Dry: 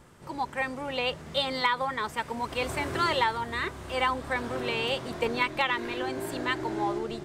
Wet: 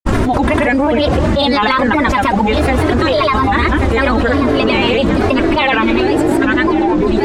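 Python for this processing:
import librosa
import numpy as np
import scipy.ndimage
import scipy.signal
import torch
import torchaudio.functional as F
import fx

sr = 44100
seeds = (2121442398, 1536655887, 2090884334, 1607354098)

y = fx.lowpass(x, sr, hz=3600.0, slope=6)
y = fx.low_shelf(y, sr, hz=380.0, db=9.5)
y = y + 0.78 * np.pad(y, (int(3.4 * sr / 1000.0), 0))[:len(y)]
y = fx.granulator(y, sr, seeds[0], grain_ms=100.0, per_s=20.0, spray_ms=100.0, spread_st=3)
y = y + 10.0 ** (-15.5 / 20.0) * np.pad(y, (int(1134 * sr / 1000.0), 0))[:len(y)]
y = fx.env_flatten(y, sr, amount_pct=100)
y = y * 10.0 ** (6.0 / 20.0)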